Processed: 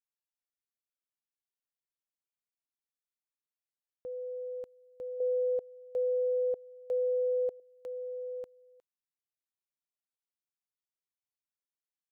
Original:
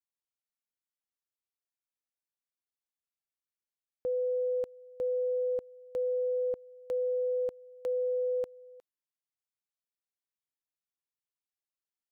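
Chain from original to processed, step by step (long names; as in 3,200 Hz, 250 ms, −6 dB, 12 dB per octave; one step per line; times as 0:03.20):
0:05.20–0:07.60: flat-topped bell 570 Hz +9.5 dB 1 octave
level −8.5 dB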